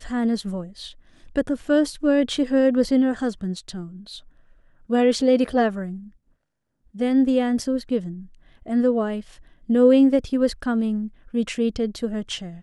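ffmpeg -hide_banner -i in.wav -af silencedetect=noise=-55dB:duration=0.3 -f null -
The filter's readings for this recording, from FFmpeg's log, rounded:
silence_start: 6.33
silence_end: 6.86 | silence_duration: 0.53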